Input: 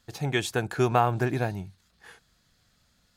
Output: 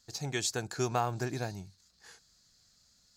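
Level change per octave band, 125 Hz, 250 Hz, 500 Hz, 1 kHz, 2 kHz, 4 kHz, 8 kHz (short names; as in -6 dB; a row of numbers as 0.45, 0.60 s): -8.5, -8.5, -8.5, -8.5, -8.0, -2.0, +4.0 dB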